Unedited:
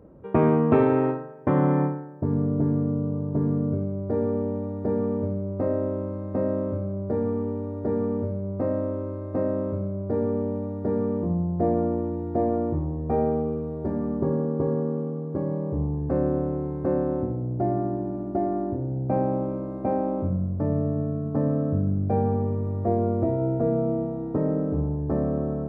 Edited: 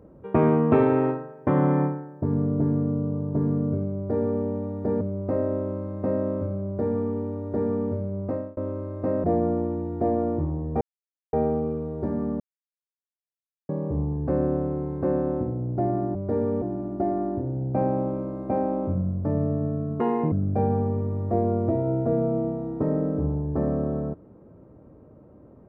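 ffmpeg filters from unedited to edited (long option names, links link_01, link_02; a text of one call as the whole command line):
ffmpeg -i in.wav -filter_complex "[0:a]asplit=11[link_01][link_02][link_03][link_04][link_05][link_06][link_07][link_08][link_09][link_10][link_11];[link_01]atrim=end=5.012[link_12];[link_02]atrim=start=5.318:end=8.88,asetpts=PTS-STARTPTS,afade=type=out:start_time=3.242:duration=0.32[link_13];[link_03]atrim=start=8.88:end=9.552,asetpts=PTS-STARTPTS,afade=type=in:duration=0.004:curve=hsin[link_14];[link_04]atrim=start=11.578:end=13.15,asetpts=PTS-STARTPTS,afade=type=out:start_time=1.568:duration=0.004:curve=hsin,apad=pad_dur=0.52[link_15];[link_05]atrim=start=13.15:end=14.22,asetpts=PTS-STARTPTS,afade=type=in:duration=0.004:curve=hsin,afade=type=out:start_time=1.066:duration=0.004:curve=hsin[link_16];[link_06]atrim=start=14.22:end=15.51,asetpts=PTS-STARTPTS,volume=0[link_17];[link_07]atrim=start=15.51:end=17.972,asetpts=PTS-STARTPTS,afade=type=in:duration=0.004:curve=hsin[link_18];[link_08]atrim=start=3.958:end=4.432[link_19];[link_09]atrim=start=17.968:end=21.354[link_20];[link_10]atrim=start=21.35:end=21.86,asetpts=PTS-STARTPTS,asetrate=70560,aresample=44100[link_21];[link_11]atrim=start=21.856[link_22];[link_13][link_14]concat=n=2:v=0:a=1[link_23];[link_12][link_23]acrossfade=duration=0.004:curve1=hsin:curve2=hsin[link_24];[link_15][link_16][link_17][link_18]concat=n=4:v=0:a=1[link_25];[link_24][link_25]acrossfade=duration=0.004:curve1=hsin:curve2=hsin[link_26];[link_26][link_19]acrossfade=duration=0.004:curve1=hsin:curve2=hsin[link_27];[link_27][link_20]acrossfade=duration=0.004:curve1=hsin:curve2=hsin[link_28];[link_28][link_21]acrossfade=duration=0.004:curve1=hsin:curve2=hsin[link_29];[link_29][link_22]acrossfade=duration=0.004:curve1=hsin:curve2=hsin" out.wav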